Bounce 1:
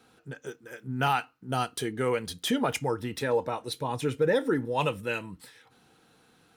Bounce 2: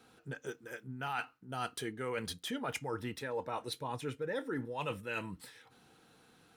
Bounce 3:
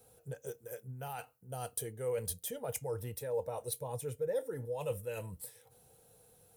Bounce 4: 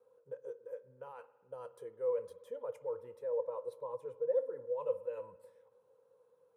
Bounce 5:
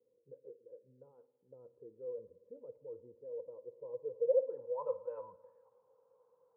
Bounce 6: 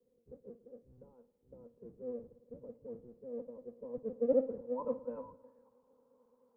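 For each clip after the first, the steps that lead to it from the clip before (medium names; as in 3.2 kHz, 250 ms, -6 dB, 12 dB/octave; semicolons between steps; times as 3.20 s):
dynamic bell 1.6 kHz, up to +4 dB, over -43 dBFS, Q 0.81; reverse; compression 6:1, threshold -33 dBFS, peak gain reduction 13.5 dB; reverse; trim -2 dB
FFT filter 110 Hz 0 dB, 300 Hz -19 dB, 500 Hz +1 dB, 1.3 kHz -18 dB, 4.1 kHz -13 dB, 12 kHz +9 dB; trim +5 dB
two resonant band-passes 730 Hz, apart 0.94 oct; spring tank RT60 1.4 s, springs 55 ms, chirp 50 ms, DRR 16 dB; trim +4.5 dB
low-pass sweep 310 Hz -> 1 kHz, 3.62–4.88 s; trim -4.5 dB
octave divider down 1 oct, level +3 dB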